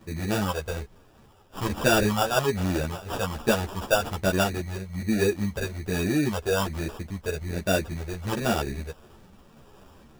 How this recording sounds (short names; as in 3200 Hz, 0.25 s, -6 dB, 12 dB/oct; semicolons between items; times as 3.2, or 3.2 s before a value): a quantiser's noise floor 10-bit, dither triangular; phasing stages 4, 1.2 Hz, lowest notch 240–1900 Hz; aliases and images of a low sample rate 2100 Hz, jitter 0%; a shimmering, thickened sound